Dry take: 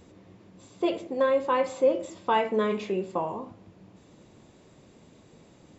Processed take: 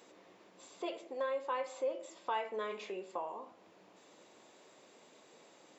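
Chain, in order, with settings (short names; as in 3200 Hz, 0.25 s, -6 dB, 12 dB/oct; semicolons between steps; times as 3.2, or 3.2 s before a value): HPF 510 Hz 12 dB/oct; compressor 1.5:1, threshold -52 dBFS, peak gain reduction 11.5 dB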